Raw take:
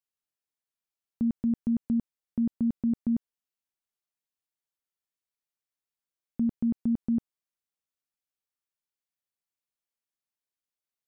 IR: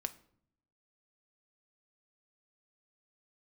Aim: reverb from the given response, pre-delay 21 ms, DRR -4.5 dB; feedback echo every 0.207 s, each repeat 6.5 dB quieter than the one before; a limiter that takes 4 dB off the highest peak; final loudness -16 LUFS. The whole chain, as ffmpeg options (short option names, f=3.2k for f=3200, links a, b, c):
-filter_complex "[0:a]alimiter=level_in=1dB:limit=-24dB:level=0:latency=1,volume=-1dB,aecho=1:1:207|414|621|828|1035|1242:0.473|0.222|0.105|0.0491|0.0231|0.0109,asplit=2[a][b];[1:a]atrim=start_sample=2205,adelay=21[c];[b][c]afir=irnorm=-1:irlink=0,volume=5.5dB[d];[a][d]amix=inputs=2:normalize=0,volume=9dB"